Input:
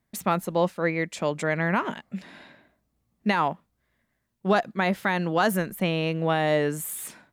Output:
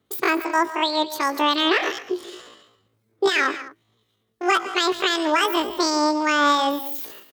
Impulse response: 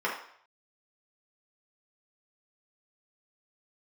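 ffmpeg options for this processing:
-filter_complex "[0:a]acrossover=split=1100[link_01][link_02];[link_01]aeval=exprs='val(0)*(1-0.5/2+0.5/2*cos(2*PI*2.8*n/s))':channel_layout=same[link_03];[link_02]aeval=exprs='val(0)*(1-0.5/2-0.5/2*cos(2*PI*2.8*n/s))':channel_layout=same[link_04];[link_03][link_04]amix=inputs=2:normalize=0,alimiter=limit=-16.5dB:level=0:latency=1:release=185,adynamicequalizer=threshold=0.00282:dfrequency=250:dqfactor=7.8:tfrequency=250:tqfactor=7.8:attack=5:release=100:ratio=0.375:range=2:mode=cutabove:tftype=bell,asplit=2[link_05][link_06];[link_06]aecho=0:1:116|149|220:0.119|0.168|0.119[link_07];[link_05][link_07]amix=inputs=2:normalize=0,asetrate=83250,aresample=44100,atempo=0.529732,highpass=51,bandreject=frequency=7300:width=27,volume=8dB"

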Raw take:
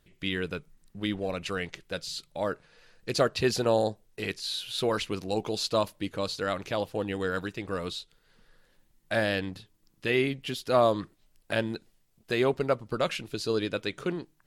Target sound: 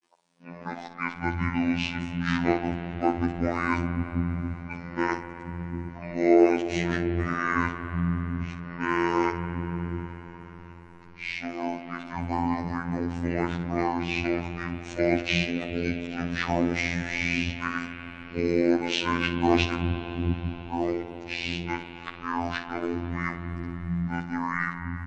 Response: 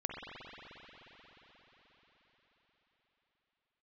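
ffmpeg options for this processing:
-filter_complex "[0:a]areverse,asetrate=25442,aresample=44100,lowpass=7100,acrossover=split=230[link_01][link_02];[link_01]adelay=750[link_03];[link_03][link_02]amix=inputs=2:normalize=0,asplit=2[link_04][link_05];[1:a]atrim=start_sample=2205,adelay=57[link_06];[link_05][link_06]afir=irnorm=-1:irlink=0,volume=-10dB[link_07];[link_04][link_07]amix=inputs=2:normalize=0,afftfilt=real='hypot(re,im)*cos(PI*b)':imag='0':win_size=2048:overlap=0.75,volume=7dB"

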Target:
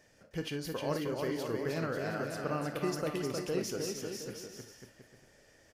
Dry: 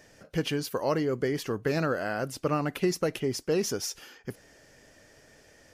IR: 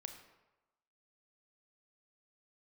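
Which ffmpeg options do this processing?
-filter_complex "[0:a]aecho=1:1:310|542.5|716.9|847.7|945.7:0.631|0.398|0.251|0.158|0.1[link_01];[1:a]atrim=start_sample=2205,atrim=end_sample=3528[link_02];[link_01][link_02]afir=irnorm=-1:irlink=0,volume=-3.5dB"

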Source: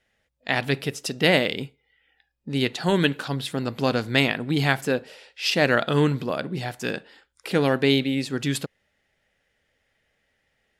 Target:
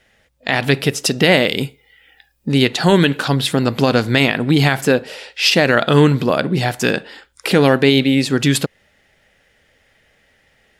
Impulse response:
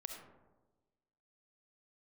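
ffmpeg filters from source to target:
-filter_complex "[0:a]asettb=1/sr,asplit=3[link_01][link_02][link_03];[link_01]atrim=end=1.474[link_04];[link_02]atrim=start=1.47:end=2.52,asetpts=PTS-STARTPTS,afade=type=in:duration=0.004:curve=qsin,afade=type=out:start_time=1.046:duration=0.004:curve=qsin,highshelf=frequency=7100:gain=11.5[link_05];[link_03]atrim=start=2.516[link_06];[link_04][link_05]acrossfade=duration=0.004:curve1=hsin:curve2=qsin[link_07];[link_07][link_06]acrossfade=duration=0.004:curve1=qsin:curve2=hsin,asplit=2[link_08][link_09];[link_09]acompressor=threshold=-29dB:ratio=6,volume=2.5dB[link_10];[link_08][link_10]amix=inputs=2:normalize=0,alimiter=level_in=7.5dB:limit=-1dB:release=50:level=0:latency=1,volume=-1dB"

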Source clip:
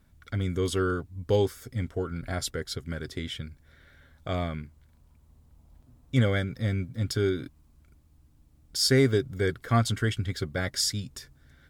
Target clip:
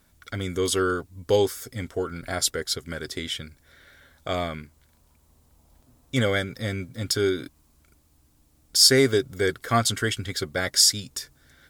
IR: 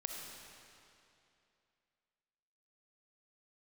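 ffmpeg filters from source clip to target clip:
-af "bass=frequency=250:gain=-9,treble=frequency=4000:gain=6,volume=5dB"

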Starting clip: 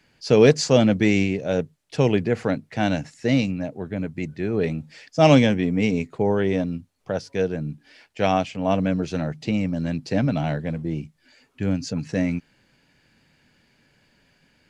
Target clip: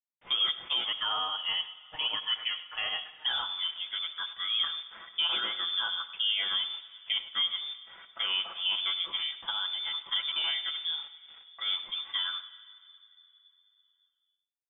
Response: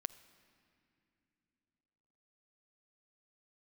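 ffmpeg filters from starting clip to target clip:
-filter_complex "[0:a]highpass=frequency=690:poles=1,bandreject=frequency=1900:width=17,aecho=1:1:6.3:0.92,alimiter=limit=-18dB:level=0:latency=1:release=276,asettb=1/sr,asplit=3[link_01][link_02][link_03];[link_01]atrim=end=0.854[link_04];[link_02]atrim=start=0.85:end=3.26,asetpts=PTS-STARTPTS,afade=type=in:duration=0.004:curve=qsin,afade=type=out:start_time=2.406:duration=0.004:curve=qsin,afreqshift=220[link_05];[link_03]atrim=start=3.256[link_06];[link_04][link_05]acrossfade=duration=0.004:curve1=hsin:curve2=qsin[link_07];[link_07][link_06]acrossfade=duration=0.004:curve1=qsin:curve2=hsin,acrusher=bits=7:mix=0:aa=0.000001,aecho=1:1:100:0.158[link_08];[1:a]atrim=start_sample=2205[link_09];[link_08][link_09]afir=irnorm=-1:irlink=0,lowpass=frequency=3100:width_type=q:width=0.5098,lowpass=frequency=3100:width_type=q:width=0.6013,lowpass=frequency=3100:width_type=q:width=0.9,lowpass=frequency=3100:width_type=q:width=2.563,afreqshift=-3700"

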